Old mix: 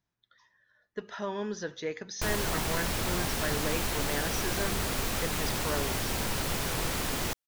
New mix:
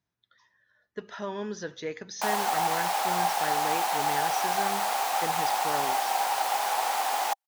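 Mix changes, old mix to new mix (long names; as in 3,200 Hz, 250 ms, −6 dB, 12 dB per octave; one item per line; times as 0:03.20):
background: add high-pass with resonance 790 Hz, resonance Q 9.6
master: add high-pass filter 53 Hz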